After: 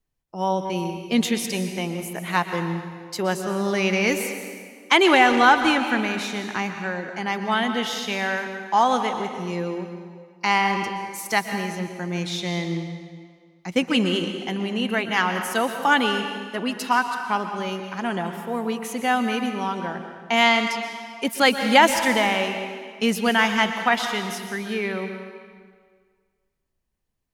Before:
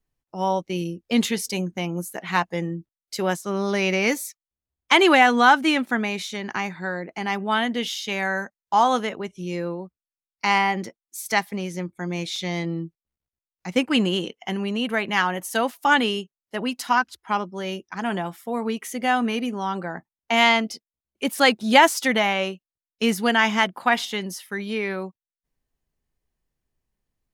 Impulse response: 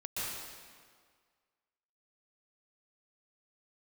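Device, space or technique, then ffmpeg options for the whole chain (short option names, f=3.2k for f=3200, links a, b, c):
saturated reverb return: -filter_complex "[0:a]asplit=2[a][b];[1:a]atrim=start_sample=2205[c];[b][c]afir=irnorm=-1:irlink=0,asoftclip=type=tanh:threshold=-7.5dB,volume=-7.5dB[d];[a][d]amix=inputs=2:normalize=0,volume=-2dB"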